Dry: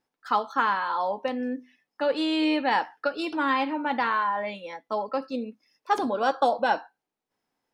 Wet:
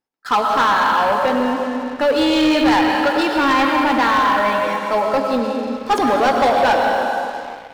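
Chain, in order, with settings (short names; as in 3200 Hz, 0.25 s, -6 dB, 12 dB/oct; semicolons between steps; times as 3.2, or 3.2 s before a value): digital reverb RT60 2.4 s, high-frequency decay 0.9×, pre-delay 70 ms, DRR 2 dB; sample leveller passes 3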